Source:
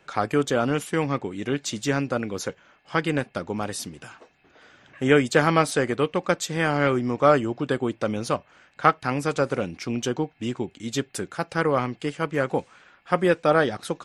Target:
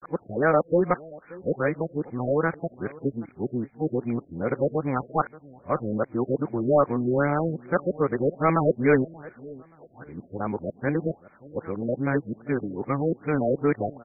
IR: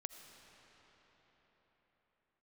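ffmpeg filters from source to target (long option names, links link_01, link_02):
-filter_complex "[0:a]areverse,asoftclip=type=tanh:threshold=-8.5dB,asplit=2[link_01][link_02];[link_02]adelay=579,lowpass=frequency=2000:poles=1,volume=-20.5dB,asplit=2[link_03][link_04];[link_04]adelay=579,lowpass=frequency=2000:poles=1,volume=0.27[link_05];[link_03][link_05]amix=inputs=2:normalize=0[link_06];[link_01][link_06]amix=inputs=2:normalize=0,afftfilt=real='re*lt(b*sr/1024,670*pow(2500/670,0.5+0.5*sin(2*PI*2.5*pts/sr)))':imag='im*lt(b*sr/1024,670*pow(2500/670,0.5+0.5*sin(2*PI*2.5*pts/sr)))':win_size=1024:overlap=0.75"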